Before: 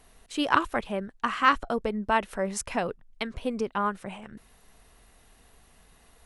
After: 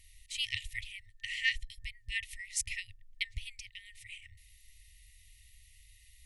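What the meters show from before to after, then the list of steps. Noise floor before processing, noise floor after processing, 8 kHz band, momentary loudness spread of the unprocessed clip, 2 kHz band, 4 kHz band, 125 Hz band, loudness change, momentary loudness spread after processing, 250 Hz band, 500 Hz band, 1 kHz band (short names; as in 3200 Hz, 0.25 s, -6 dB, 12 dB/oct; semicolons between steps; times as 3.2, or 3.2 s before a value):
-59 dBFS, -61 dBFS, 0.0 dB, 13 LU, -5.5 dB, 0.0 dB, -9.0 dB, -9.0 dB, 17 LU, under -40 dB, under -40 dB, under -40 dB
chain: FFT band-reject 110–1800 Hz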